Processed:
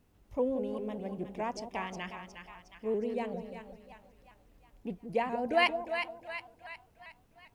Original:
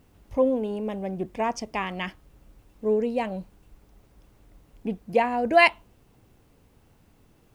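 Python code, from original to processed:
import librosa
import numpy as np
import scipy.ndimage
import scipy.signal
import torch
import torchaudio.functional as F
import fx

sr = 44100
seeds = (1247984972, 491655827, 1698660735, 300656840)

y = fx.echo_split(x, sr, split_hz=770.0, low_ms=176, high_ms=361, feedback_pct=52, wet_db=-7.5)
y = fx.vibrato_shape(y, sr, shape='saw_up', rate_hz=5.1, depth_cents=100.0)
y = y * 10.0 ** (-9.0 / 20.0)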